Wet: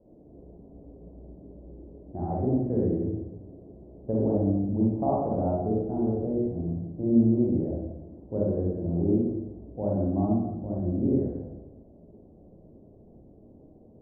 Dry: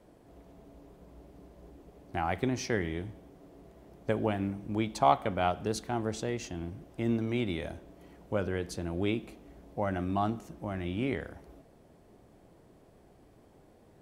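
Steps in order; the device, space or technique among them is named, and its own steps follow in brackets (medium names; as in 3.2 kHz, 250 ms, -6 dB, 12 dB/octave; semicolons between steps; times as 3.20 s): next room (low-pass 610 Hz 24 dB/octave; reverberation RT60 0.95 s, pre-delay 36 ms, DRR -5 dB)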